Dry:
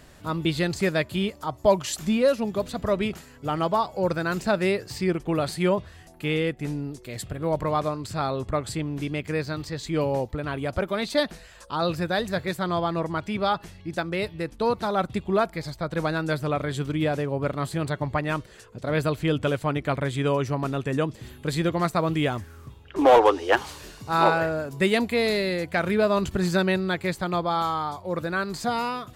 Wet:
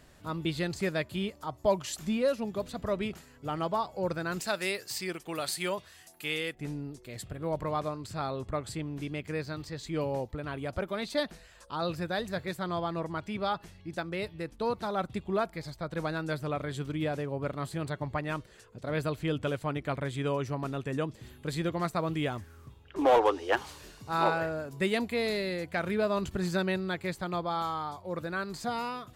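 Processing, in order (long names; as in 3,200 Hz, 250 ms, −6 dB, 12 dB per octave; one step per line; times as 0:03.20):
0:04.40–0:06.55: spectral tilt +3.5 dB per octave
level −7 dB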